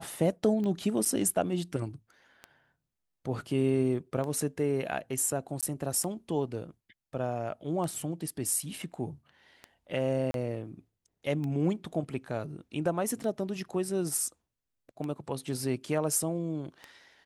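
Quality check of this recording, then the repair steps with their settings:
tick 33 1/3 rpm -25 dBFS
1.05–1.06 s: dropout 6.5 ms
5.61–5.63 s: dropout 17 ms
10.31–10.34 s: dropout 32 ms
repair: de-click; interpolate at 1.05 s, 6.5 ms; interpolate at 5.61 s, 17 ms; interpolate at 10.31 s, 32 ms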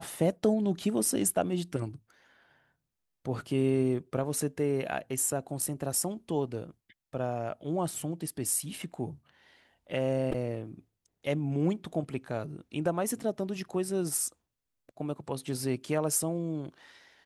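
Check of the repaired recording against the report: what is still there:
nothing left

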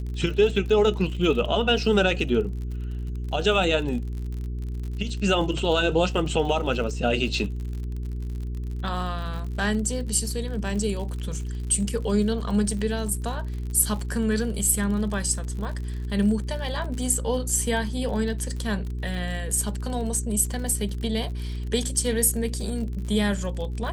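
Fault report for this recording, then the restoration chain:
crackle 50 per s -33 dBFS
hum 60 Hz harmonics 7 -30 dBFS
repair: de-click; de-hum 60 Hz, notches 7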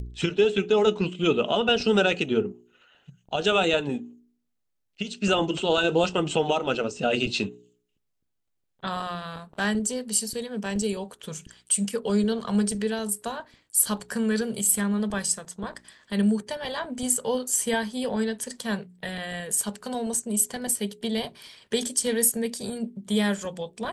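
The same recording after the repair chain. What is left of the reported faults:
nothing left

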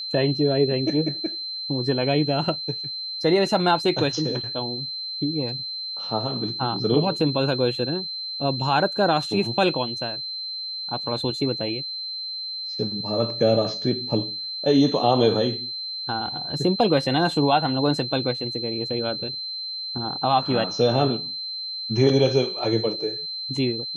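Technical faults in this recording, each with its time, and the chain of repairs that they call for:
whine 4.1 kHz -29 dBFS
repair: band-stop 4.1 kHz, Q 30

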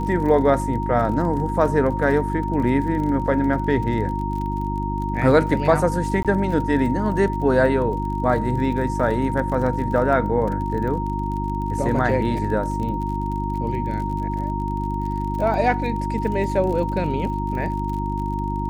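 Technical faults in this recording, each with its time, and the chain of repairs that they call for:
crackle 38 per s -30 dBFS
hum 50 Hz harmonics 7 -26 dBFS
whine 930 Hz -27 dBFS
6.23–6.25 s: dropout 17 ms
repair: de-click; band-stop 930 Hz, Q 30; de-hum 50 Hz, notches 7; interpolate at 6.23 s, 17 ms

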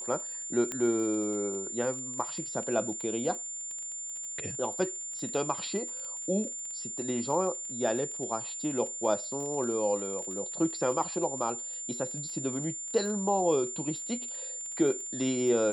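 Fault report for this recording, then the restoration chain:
crackle 24 per s -37 dBFS
whine 7.2 kHz -36 dBFS
0.72 s: pop -19 dBFS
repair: de-click; band-stop 7.2 kHz, Q 30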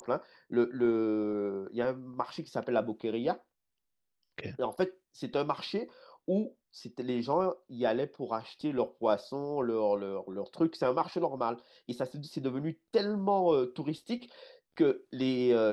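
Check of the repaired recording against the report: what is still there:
nothing left

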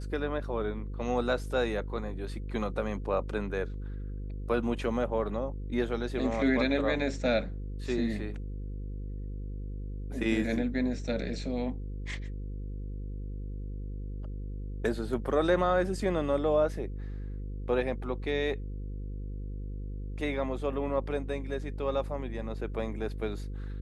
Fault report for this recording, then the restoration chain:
buzz 50 Hz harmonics 10 -37 dBFS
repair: de-hum 50 Hz, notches 10

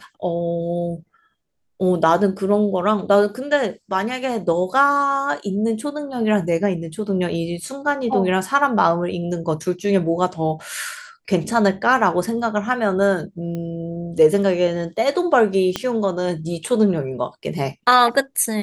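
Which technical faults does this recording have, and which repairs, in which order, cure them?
13.55 s: pop -18 dBFS
15.76 s: pop -7 dBFS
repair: de-click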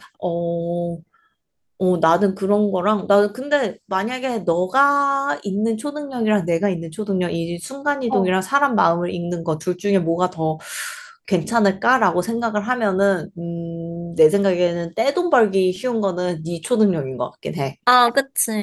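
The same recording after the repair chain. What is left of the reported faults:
13.55 s: pop
15.76 s: pop

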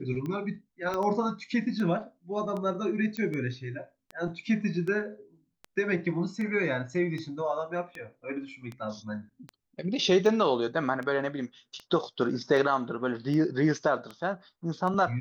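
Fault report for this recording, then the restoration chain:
tick 78 rpm -25 dBFS
0.94 s: pop -19 dBFS
3.17 s: pop -20 dBFS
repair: de-click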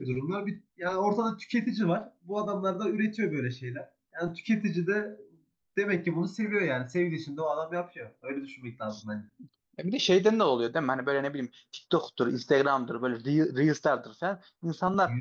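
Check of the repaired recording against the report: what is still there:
0.94 s: pop
3.17 s: pop

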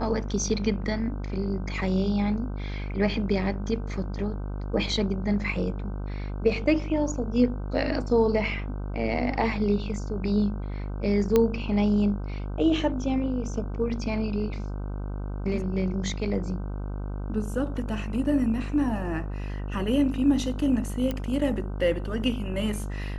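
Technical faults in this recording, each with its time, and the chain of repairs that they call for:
buzz 50 Hz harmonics 31 -32 dBFS
11.36 s: pop -9 dBFS
21.11 s: pop -16 dBFS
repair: de-click; de-hum 50 Hz, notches 31

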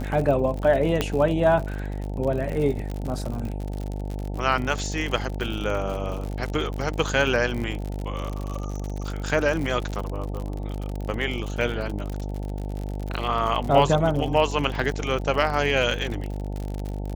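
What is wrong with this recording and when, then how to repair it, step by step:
buzz 50 Hz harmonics 18 -30 dBFS
crackle 59 per s -29 dBFS
1.01 s: pop -8 dBFS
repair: de-click; de-hum 50 Hz, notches 18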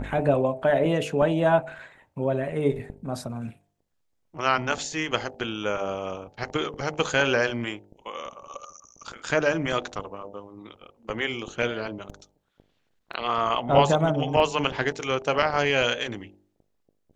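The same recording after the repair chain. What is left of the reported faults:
nothing left

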